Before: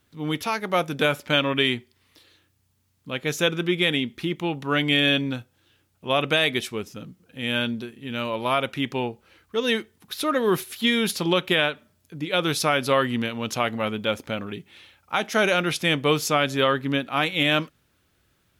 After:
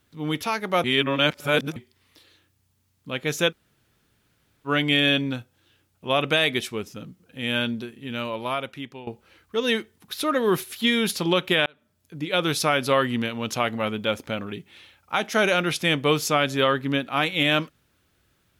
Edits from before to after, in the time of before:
0.84–1.76 reverse
3.5–4.67 room tone, crossfade 0.06 s
8.04–9.07 fade out, to -17 dB
11.66–12.19 fade in

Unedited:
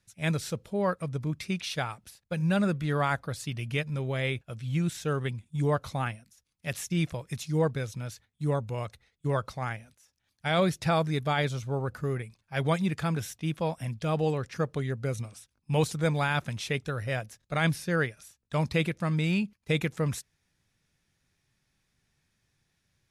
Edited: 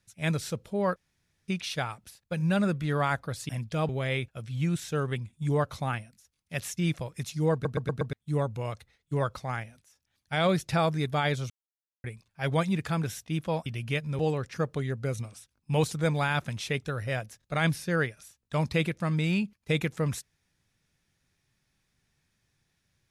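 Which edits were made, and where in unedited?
0.96–1.48 room tone
3.49–4.02 swap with 13.79–14.19
7.66 stutter in place 0.12 s, 5 plays
11.63–12.17 mute

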